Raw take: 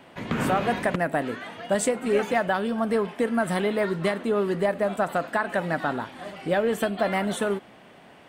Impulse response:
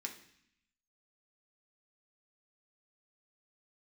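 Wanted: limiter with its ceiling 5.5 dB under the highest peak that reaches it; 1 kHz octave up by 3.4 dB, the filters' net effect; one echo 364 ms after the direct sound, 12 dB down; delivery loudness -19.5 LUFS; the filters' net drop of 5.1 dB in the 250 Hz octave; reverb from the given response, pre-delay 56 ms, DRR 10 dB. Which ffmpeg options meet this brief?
-filter_complex "[0:a]equalizer=f=250:t=o:g=-7,equalizer=f=1000:t=o:g=5.5,alimiter=limit=0.178:level=0:latency=1,aecho=1:1:364:0.251,asplit=2[s0][s1];[1:a]atrim=start_sample=2205,adelay=56[s2];[s1][s2]afir=irnorm=-1:irlink=0,volume=0.376[s3];[s0][s3]amix=inputs=2:normalize=0,volume=2.24"

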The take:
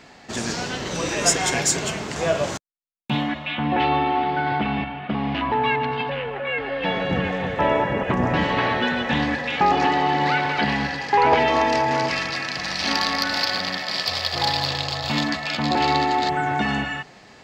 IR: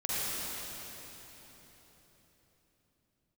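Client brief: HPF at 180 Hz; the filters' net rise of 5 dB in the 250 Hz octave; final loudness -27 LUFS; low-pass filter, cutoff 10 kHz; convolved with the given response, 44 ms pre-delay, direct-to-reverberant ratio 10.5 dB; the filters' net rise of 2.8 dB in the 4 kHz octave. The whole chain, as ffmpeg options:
-filter_complex "[0:a]highpass=180,lowpass=10000,equalizer=f=250:t=o:g=7.5,equalizer=f=4000:t=o:g=3.5,asplit=2[s0][s1];[1:a]atrim=start_sample=2205,adelay=44[s2];[s1][s2]afir=irnorm=-1:irlink=0,volume=0.112[s3];[s0][s3]amix=inputs=2:normalize=0,volume=0.447"

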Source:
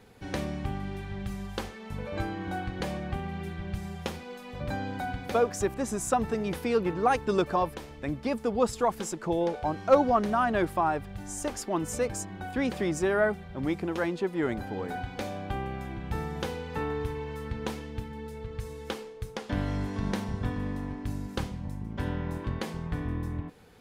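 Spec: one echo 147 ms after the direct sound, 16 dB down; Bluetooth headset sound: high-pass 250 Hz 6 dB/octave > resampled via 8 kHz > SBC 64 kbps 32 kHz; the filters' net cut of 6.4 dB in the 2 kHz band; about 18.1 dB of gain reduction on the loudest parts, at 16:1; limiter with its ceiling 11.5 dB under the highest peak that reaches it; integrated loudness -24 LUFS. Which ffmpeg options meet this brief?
-af "equalizer=f=2000:t=o:g=-9,acompressor=threshold=0.0224:ratio=16,alimiter=level_in=2:limit=0.0631:level=0:latency=1,volume=0.501,highpass=f=250:p=1,aecho=1:1:147:0.158,aresample=8000,aresample=44100,volume=8.91" -ar 32000 -c:a sbc -b:a 64k

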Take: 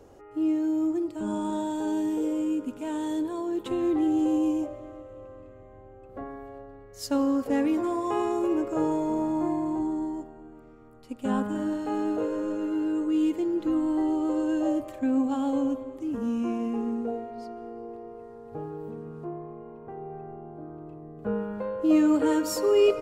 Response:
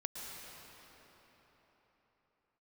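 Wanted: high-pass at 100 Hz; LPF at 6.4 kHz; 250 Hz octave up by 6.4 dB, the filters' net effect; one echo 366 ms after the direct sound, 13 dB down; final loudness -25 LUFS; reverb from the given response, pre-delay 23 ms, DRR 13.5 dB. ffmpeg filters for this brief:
-filter_complex "[0:a]highpass=100,lowpass=6400,equalizer=f=250:t=o:g=8.5,aecho=1:1:366:0.224,asplit=2[s0][s1];[1:a]atrim=start_sample=2205,adelay=23[s2];[s1][s2]afir=irnorm=-1:irlink=0,volume=0.211[s3];[s0][s3]amix=inputs=2:normalize=0,volume=0.631"

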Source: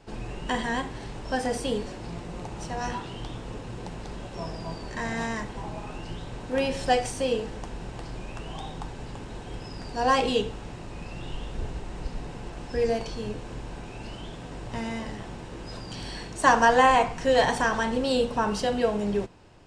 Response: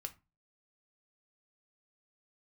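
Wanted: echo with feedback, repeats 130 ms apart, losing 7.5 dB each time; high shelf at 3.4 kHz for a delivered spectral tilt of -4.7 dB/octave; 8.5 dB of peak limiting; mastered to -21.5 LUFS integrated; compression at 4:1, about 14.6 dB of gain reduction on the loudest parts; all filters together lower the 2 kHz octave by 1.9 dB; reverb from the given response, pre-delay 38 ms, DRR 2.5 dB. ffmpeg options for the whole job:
-filter_complex "[0:a]equalizer=f=2000:t=o:g=-3.5,highshelf=f=3400:g=4,acompressor=threshold=0.0224:ratio=4,alimiter=level_in=1.78:limit=0.0631:level=0:latency=1,volume=0.562,aecho=1:1:130|260|390|520|650:0.422|0.177|0.0744|0.0312|0.0131,asplit=2[s0][s1];[1:a]atrim=start_sample=2205,adelay=38[s2];[s1][s2]afir=irnorm=-1:irlink=0,volume=1.06[s3];[s0][s3]amix=inputs=2:normalize=0,volume=5.62"

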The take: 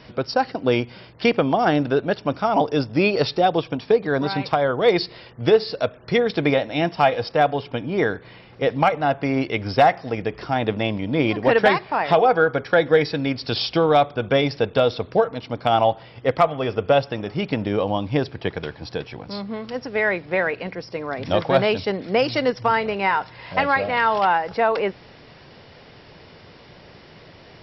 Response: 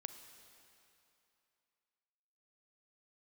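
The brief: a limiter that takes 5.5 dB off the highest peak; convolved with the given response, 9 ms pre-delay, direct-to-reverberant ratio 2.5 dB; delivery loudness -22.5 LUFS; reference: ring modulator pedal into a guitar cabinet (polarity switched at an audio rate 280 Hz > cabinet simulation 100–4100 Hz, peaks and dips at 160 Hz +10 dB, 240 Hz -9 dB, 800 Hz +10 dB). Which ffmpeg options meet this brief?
-filter_complex "[0:a]alimiter=limit=0.251:level=0:latency=1,asplit=2[s0][s1];[1:a]atrim=start_sample=2205,adelay=9[s2];[s1][s2]afir=irnorm=-1:irlink=0,volume=1.12[s3];[s0][s3]amix=inputs=2:normalize=0,aeval=exprs='val(0)*sgn(sin(2*PI*280*n/s))':c=same,highpass=100,equalizer=f=160:t=q:w=4:g=10,equalizer=f=240:t=q:w=4:g=-9,equalizer=f=800:t=q:w=4:g=10,lowpass=f=4100:w=0.5412,lowpass=f=4100:w=1.3066,volume=0.631"

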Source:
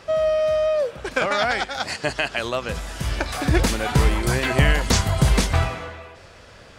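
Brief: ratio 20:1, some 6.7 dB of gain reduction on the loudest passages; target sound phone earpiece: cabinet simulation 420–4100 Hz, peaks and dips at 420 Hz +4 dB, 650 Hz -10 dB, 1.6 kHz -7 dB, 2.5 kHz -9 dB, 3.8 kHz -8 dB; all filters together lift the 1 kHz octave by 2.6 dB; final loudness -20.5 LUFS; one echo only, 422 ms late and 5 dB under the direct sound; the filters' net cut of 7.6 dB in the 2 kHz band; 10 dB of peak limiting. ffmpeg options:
-af "equalizer=f=1000:t=o:g=8.5,equalizer=f=2000:t=o:g=-5,acompressor=threshold=0.126:ratio=20,alimiter=limit=0.158:level=0:latency=1,highpass=420,equalizer=f=420:t=q:w=4:g=4,equalizer=f=650:t=q:w=4:g=-10,equalizer=f=1600:t=q:w=4:g=-7,equalizer=f=2500:t=q:w=4:g=-9,equalizer=f=3800:t=q:w=4:g=-8,lowpass=f=4100:w=0.5412,lowpass=f=4100:w=1.3066,aecho=1:1:422:0.562,volume=3.35"

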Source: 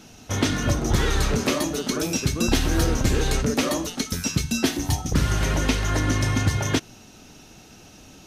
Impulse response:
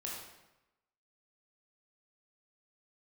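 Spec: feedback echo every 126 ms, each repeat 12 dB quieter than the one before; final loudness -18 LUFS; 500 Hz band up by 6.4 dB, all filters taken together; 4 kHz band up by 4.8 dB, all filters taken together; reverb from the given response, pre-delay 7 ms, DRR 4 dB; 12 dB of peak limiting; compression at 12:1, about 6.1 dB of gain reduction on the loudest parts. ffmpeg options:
-filter_complex "[0:a]equalizer=f=500:t=o:g=8,equalizer=f=4000:t=o:g=6,acompressor=threshold=0.1:ratio=12,alimiter=limit=0.0841:level=0:latency=1,aecho=1:1:126|252|378:0.251|0.0628|0.0157,asplit=2[s0][s1];[1:a]atrim=start_sample=2205,adelay=7[s2];[s1][s2]afir=irnorm=-1:irlink=0,volume=0.631[s3];[s0][s3]amix=inputs=2:normalize=0,volume=3.55"

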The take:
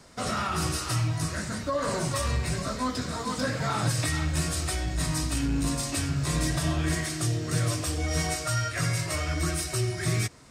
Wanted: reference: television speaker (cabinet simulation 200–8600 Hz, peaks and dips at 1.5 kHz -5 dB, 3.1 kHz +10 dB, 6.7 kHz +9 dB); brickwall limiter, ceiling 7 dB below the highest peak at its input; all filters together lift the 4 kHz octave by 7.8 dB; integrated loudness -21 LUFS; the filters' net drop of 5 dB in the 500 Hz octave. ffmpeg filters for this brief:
-af "equalizer=f=500:t=o:g=-6.5,equalizer=f=4000:t=o:g=5,alimiter=limit=0.0841:level=0:latency=1,highpass=f=200:w=0.5412,highpass=f=200:w=1.3066,equalizer=f=1500:t=q:w=4:g=-5,equalizer=f=3100:t=q:w=4:g=10,equalizer=f=6700:t=q:w=4:g=9,lowpass=f=8600:w=0.5412,lowpass=f=8600:w=1.3066,volume=2.66"

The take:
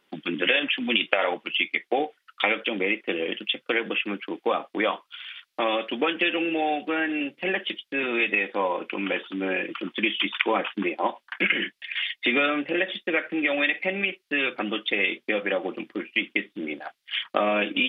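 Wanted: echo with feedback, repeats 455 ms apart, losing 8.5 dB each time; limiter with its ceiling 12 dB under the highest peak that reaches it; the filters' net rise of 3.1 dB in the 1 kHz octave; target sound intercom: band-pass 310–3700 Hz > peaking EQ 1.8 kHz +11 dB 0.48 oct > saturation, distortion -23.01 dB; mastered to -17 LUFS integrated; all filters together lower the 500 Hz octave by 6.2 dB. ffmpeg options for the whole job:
-af "equalizer=f=500:t=o:g=-8.5,equalizer=f=1000:t=o:g=5.5,alimiter=limit=0.178:level=0:latency=1,highpass=310,lowpass=3700,equalizer=f=1800:t=o:w=0.48:g=11,aecho=1:1:455|910|1365|1820:0.376|0.143|0.0543|0.0206,asoftclip=threshold=0.299,volume=2.37"

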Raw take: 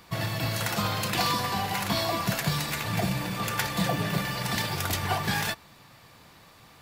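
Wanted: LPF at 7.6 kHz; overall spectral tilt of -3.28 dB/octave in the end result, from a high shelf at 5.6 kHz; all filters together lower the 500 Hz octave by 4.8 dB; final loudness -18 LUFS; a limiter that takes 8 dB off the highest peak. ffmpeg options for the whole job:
-af "lowpass=7600,equalizer=f=500:t=o:g=-7,highshelf=f=5600:g=8.5,volume=3.98,alimiter=limit=0.355:level=0:latency=1"

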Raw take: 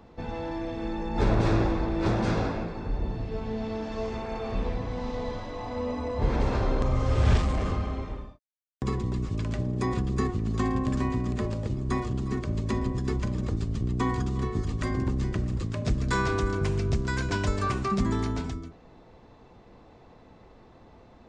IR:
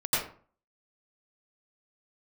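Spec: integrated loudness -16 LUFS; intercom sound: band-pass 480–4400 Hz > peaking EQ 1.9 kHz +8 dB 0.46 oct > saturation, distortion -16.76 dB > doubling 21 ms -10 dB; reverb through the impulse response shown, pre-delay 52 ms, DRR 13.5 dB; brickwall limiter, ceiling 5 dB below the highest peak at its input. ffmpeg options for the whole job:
-filter_complex "[0:a]alimiter=limit=0.119:level=0:latency=1,asplit=2[s0][s1];[1:a]atrim=start_sample=2205,adelay=52[s2];[s1][s2]afir=irnorm=-1:irlink=0,volume=0.0596[s3];[s0][s3]amix=inputs=2:normalize=0,highpass=480,lowpass=4400,equalizer=f=1900:t=o:w=0.46:g=8,asoftclip=threshold=0.0447,asplit=2[s4][s5];[s5]adelay=21,volume=0.316[s6];[s4][s6]amix=inputs=2:normalize=0,volume=11.2"

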